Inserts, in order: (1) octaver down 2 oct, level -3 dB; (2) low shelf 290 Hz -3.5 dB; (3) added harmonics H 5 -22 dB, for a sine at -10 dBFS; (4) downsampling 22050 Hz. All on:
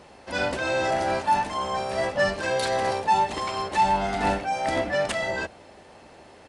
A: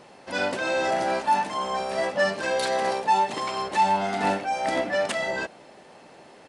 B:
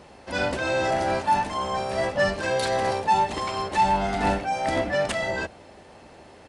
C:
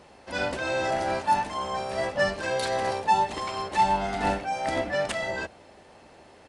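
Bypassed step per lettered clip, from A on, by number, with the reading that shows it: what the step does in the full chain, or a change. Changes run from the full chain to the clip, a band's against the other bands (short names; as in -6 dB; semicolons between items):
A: 1, 125 Hz band -5.0 dB; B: 2, 125 Hz band +2.5 dB; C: 3, crest factor change +2.0 dB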